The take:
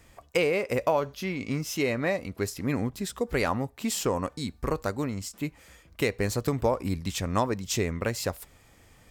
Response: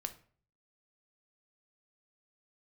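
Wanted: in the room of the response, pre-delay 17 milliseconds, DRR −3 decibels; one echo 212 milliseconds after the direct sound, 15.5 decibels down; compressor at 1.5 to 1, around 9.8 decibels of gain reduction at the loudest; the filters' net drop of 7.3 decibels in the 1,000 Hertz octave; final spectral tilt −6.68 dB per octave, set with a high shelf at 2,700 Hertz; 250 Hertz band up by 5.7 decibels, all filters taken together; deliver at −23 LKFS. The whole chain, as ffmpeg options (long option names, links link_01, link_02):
-filter_complex "[0:a]equalizer=frequency=250:width_type=o:gain=7.5,equalizer=frequency=1000:width_type=o:gain=-9,highshelf=frequency=2700:gain=-5.5,acompressor=threshold=-48dB:ratio=1.5,aecho=1:1:212:0.168,asplit=2[link_01][link_02];[1:a]atrim=start_sample=2205,adelay=17[link_03];[link_02][link_03]afir=irnorm=-1:irlink=0,volume=4.5dB[link_04];[link_01][link_04]amix=inputs=2:normalize=0,volume=9dB"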